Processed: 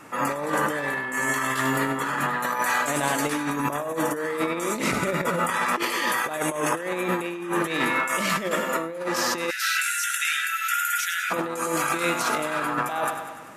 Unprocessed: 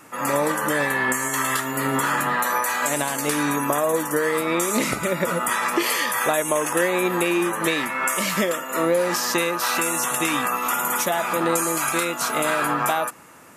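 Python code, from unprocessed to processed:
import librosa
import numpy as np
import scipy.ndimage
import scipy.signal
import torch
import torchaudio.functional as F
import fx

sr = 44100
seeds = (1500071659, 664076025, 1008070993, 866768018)

y = fx.echo_feedback(x, sr, ms=98, feedback_pct=59, wet_db=-11.0)
y = fx.dmg_crackle(y, sr, seeds[0], per_s=110.0, level_db=-30.0, at=(7.54, 8.06), fade=0.02)
y = fx.brickwall_highpass(y, sr, low_hz=1300.0, at=(9.49, 11.3), fade=0.02)
y = fx.over_compress(y, sr, threshold_db=-24.0, ratio=-0.5)
y = fx.high_shelf(y, sr, hz=6800.0, db=-9.5)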